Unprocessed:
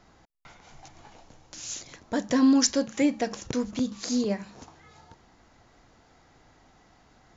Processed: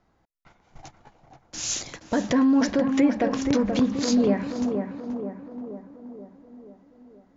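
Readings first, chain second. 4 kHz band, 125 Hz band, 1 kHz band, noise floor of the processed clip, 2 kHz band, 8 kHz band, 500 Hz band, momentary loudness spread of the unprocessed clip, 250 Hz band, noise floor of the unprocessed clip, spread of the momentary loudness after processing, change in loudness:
0.0 dB, +7.0 dB, +4.5 dB, -67 dBFS, +3.5 dB, n/a, +5.5 dB, 16 LU, +4.0 dB, -60 dBFS, 18 LU, +2.5 dB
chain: treble ducked by the level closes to 1900 Hz, closed at -23 dBFS; limiter -23 dBFS, peak gain reduction 10.5 dB; gate -47 dBFS, range -17 dB; tape echo 0.479 s, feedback 65%, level -3.5 dB, low-pass 1400 Hz; mismatched tape noise reduction decoder only; gain +9 dB

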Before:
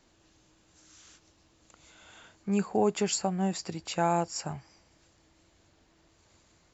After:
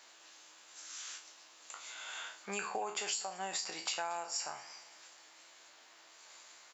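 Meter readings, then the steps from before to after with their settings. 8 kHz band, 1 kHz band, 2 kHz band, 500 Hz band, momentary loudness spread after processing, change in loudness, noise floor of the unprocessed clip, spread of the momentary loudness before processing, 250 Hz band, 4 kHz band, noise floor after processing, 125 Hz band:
n/a, -7.5 dB, +0.5 dB, -13.5 dB, 20 LU, -9.5 dB, -66 dBFS, 12 LU, -22.5 dB, 0.0 dB, -60 dBFS, -26.0 dB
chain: spectral trails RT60 0.34 s; HPF 930 Hz 12 dB/oct; compressor 8:1, threshold -44 dBFS, peak gain reduction 18.5 dB; on a send: feedback echo 0.232 s, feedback 51%, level -22 dB; on the sum: gain +9 dB

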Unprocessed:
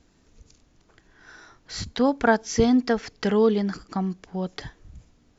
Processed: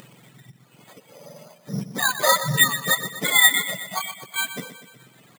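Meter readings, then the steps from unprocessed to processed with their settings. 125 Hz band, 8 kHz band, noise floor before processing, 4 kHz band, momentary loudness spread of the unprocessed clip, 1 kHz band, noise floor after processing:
+1.0 dB, n/a, -62 dBFS, +14.5 dB, 14 LU, +2.5 dB, -56 dBFS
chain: spectrum mirrored in octaves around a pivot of 930 Hz; in parallel at -2.5 dB: limiter -17.5 dBFS, peak gain reduction 7.5 dB; on the sum: low shelf 410 Hz -10 dB; careless resampling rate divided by 8×, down filtered, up hold; high shelf 4200 Hz +6 dB; upward compressor, threshold -39 dBFS; reverb removal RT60 1.3 s; on a send: feedback echo 0.123 s, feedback 58%, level -12 dB; on the sum: ending taper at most 450 dB/s; gain +3 dB

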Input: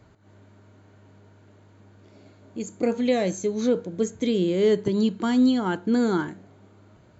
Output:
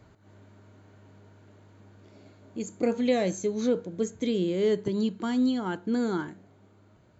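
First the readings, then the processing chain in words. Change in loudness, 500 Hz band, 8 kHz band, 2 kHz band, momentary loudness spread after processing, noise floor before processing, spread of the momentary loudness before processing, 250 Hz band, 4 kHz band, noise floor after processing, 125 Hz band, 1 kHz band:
-4.5 dB, -4.0 dB, n/a, -4.5 dB, 8 LU, -55 dBFS, 8 LU, -4.5 dB, -4.0 dB, -59 dBFS, -4.5 dB, -4.5 dB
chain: vocal rider 2 s; gain -4.5 dB

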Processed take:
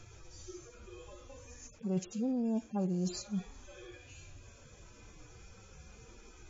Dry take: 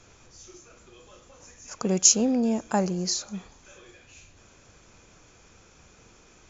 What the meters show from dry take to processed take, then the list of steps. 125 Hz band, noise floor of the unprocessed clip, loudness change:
-4.5 dB, -56 dBFS, -13.0 dB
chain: median-filter separation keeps harmonic; low shelf 270 Hz +7 dB; reverse; compressor 5:1, threshold -32 dBFS, peak gain reduction 14 dB; reverse

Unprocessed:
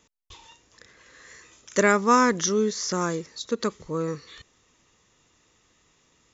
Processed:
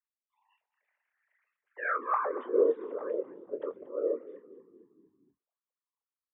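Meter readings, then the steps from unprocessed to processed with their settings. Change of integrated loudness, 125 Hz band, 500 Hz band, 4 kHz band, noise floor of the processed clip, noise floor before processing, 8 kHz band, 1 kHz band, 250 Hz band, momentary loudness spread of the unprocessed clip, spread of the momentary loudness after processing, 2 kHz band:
-8.0 dB, under -35 dB, -4.0 dB, under -35 dB, under -85 dBFS, -65 dBFS, n/a, -9.5 dB, -15.0 dB, 13 LU, 12 LU, -10.5 dB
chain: sine-wave speech; low-pass opened by the level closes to 530 Hz, open at -21.5 dBFS; low shelf 320 Hz +7 dB; in parallel at -3 dB: limiter -20 dBFS, peak gain reduction 11.5 dB; on the sum: transient shaper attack -10 dB, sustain +6 dB; whisperiser; elliptic high-pass 240 Hz; band-pass sweep 2300 Hz -> 510 Hz, 1.58–2.47; doubler 24 ms -10.5 dB; on a send: frequency-shifting echo 0.233 s, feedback 53%, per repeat -36 Hz, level -17 dB; on the sum: gain -7 dB

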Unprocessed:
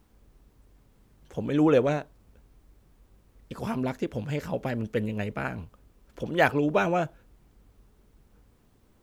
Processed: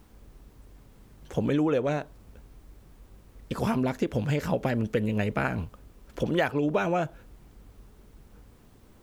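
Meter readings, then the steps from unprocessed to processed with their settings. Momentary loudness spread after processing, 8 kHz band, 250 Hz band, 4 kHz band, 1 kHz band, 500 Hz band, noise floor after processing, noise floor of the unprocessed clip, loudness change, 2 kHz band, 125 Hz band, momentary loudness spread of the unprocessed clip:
10 LU, +1.5 dB, +0.5 dB, +0.5 dB, -1.5 dB, -1.0 dB, -56 dBFS, -63 dBFS, -0.5 dB, -2.0 dB, +2.5 dB, 14 LU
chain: compressor 8:1, threshold -29 dBFS, peak gain reduction 13.5 dB; gain +7 dB

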